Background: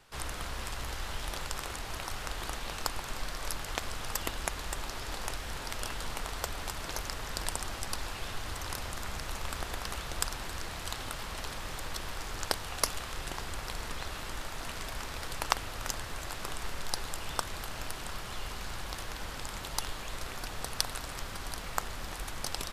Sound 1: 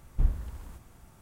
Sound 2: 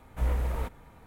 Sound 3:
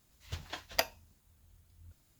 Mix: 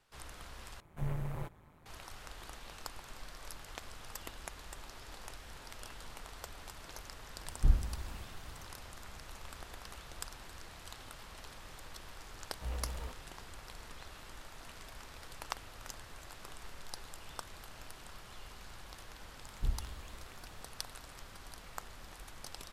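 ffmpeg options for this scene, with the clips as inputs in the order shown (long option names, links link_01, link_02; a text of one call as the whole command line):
ffmpeg -i bed.wav -i cue0.wav -i cue1.wav -filter_complex "[2:a]asplit=2[link_01][link_02];[1:a]asplit=2[link_03][link_04];[0:a]volume=-11.5dB[link_05];[link_01]aeval=exprs='val(0)*sin(2*PI*80*n/s)':channel_layout=same[link_06];[link_05]asplit=2[link_07][link_08];[link_07]atrim=end=0.804[link_09];[link_06]atrim=end=1.06,asetpts=PTS-STARTPTS,volume=-5.5dB[link_10];[link_08]atrim=start=1.856[link_11];[link_03]atrim=end=1.21,asetpts=PTS-STARTPTS,volume=-1dB,afade=type=in:duration=0.004:curve=hsin,afade=type=out:start_time=1.206:duration=0.004:curve=hsin,adelay=7450[link_12];[link_02]atrim=end=1.06,asetpts=PTS-STARTPTS,volume=-12dB,afade=type=in:duration=0.004:curve=hsin,afade=type=out:start_time=1.056:duration=0.004:curve=hsin,adelay=12440[link_13];[link_04]atrim=end=1.21,asetpts=PTS-STARTPTS,volume=-8.5dB,afade=type=in:duration=0.004:curve=hsin,afade=type=out:start_time=1.206:duration=0.004:curve=hsin,adelay=19440[link_14];[link_09][link_10]acrossfade=duration=0.004:curve1=hsin:curve2=hsin[link_15];[link_15][link_11]acrossfade=duration=0.004:curve1=hsin:curve2=hsin[link_16];[link_16][link_12][link_13][link_14]amix=inputs=4:normalize=0" out.wav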